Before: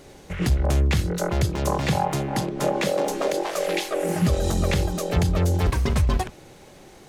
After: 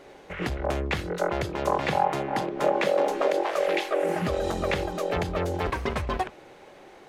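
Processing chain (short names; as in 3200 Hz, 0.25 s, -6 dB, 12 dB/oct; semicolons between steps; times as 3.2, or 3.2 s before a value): tone controls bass -14 dB, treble -14 dB; gain +1.5 dB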